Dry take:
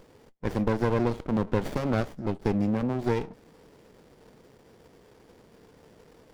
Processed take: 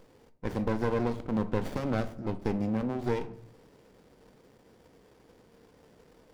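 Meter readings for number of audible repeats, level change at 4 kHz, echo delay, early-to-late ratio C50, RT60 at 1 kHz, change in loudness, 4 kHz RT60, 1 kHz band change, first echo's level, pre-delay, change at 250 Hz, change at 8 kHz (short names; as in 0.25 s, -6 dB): none, -3.5 dB, none, 16.5 dB, 0.60 s, -3.5 dB, 0.35 s, -3.5 dB, none, 4 ms, -3.5 dB, n/a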